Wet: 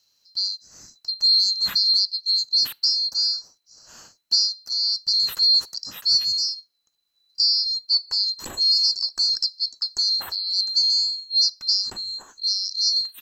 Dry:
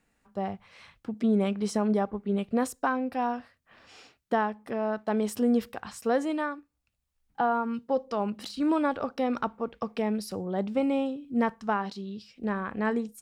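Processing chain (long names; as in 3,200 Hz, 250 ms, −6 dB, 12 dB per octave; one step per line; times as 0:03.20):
neighbouring bands swapped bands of 4,000 Hz
level +6 dB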